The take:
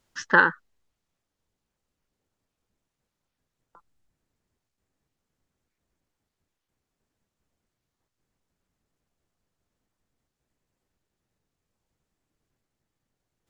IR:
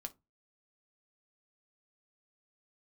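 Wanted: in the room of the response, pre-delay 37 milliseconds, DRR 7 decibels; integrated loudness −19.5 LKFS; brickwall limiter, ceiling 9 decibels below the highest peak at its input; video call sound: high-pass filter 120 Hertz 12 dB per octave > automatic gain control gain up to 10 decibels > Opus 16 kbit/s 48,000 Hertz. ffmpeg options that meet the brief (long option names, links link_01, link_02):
-filter_complex "[0:a]alimiter=limit=-12dB:level=0:latency=1,asplit=2[link_01][link_02];[1:a]atrim=start_sample=2205,adelay=37[link_03];[link_02][link_03]afir=irnorm=-1:irlink=0,volume=-3.5dB[link_04];[link_01][link_04]amix=inputs=2:normalize=0,highpass=120,dynaudnorm=maxgain=10dB,volume=7.5dB" -ar 48000 -c:a libopus -b:a 16k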